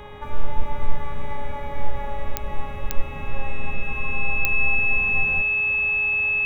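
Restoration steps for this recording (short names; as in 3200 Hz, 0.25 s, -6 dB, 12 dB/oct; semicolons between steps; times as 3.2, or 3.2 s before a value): de-click; de-hum 415.5 Hz, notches 9; notch 2600 Hz, Q 30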